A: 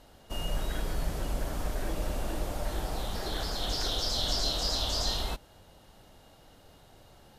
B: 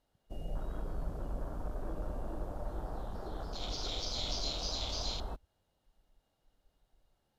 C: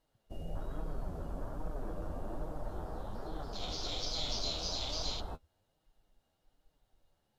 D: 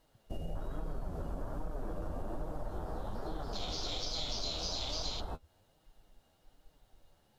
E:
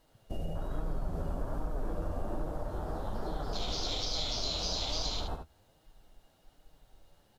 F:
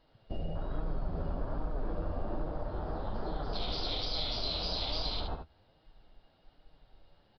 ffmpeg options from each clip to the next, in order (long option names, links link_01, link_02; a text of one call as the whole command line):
ffmpeg -i in.wav -af "afwtdn=0.0141,volume=-6dB" out.wav
ffmpeg -i in.wav -af "flanger=delay=6.2:depth=6.4:regen=34:speed=1.2:shape=sinusoidal,volume=4dB" out.wav
ffmpeg -i in.wav -af "acompressor=threshold=-45dB:ratio=3,volume=8.5dB" out.wav
ffmpeg -i in.wav -af "aecho=1:1:73:0.473,volume=2.5dB" out.wav
ffmpeg -i in.wav -af "aresample=11025,aresample=44100" out.wav